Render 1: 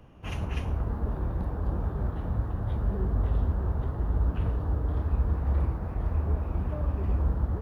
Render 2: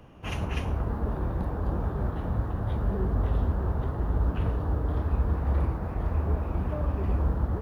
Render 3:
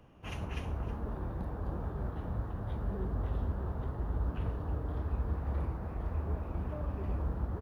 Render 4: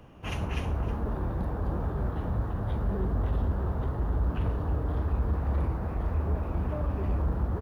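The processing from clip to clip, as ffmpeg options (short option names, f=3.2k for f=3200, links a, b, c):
-af "lowshelf=f=130:g=-5,volume=4dB"
-af "aecho=1:1:317:0.188,volume=-8dB"
-af "asoftclip=type=tanh:threshold=-26dB,volume=7.5dB"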